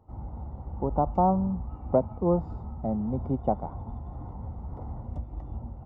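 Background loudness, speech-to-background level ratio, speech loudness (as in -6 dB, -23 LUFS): -39.5 LUFS, 11.0 dB, -28.5 LUFS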